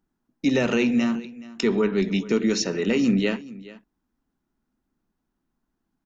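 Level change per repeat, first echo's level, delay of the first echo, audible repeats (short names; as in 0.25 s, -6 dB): no steady repeat, -19.0 dB, 0.425 s, 1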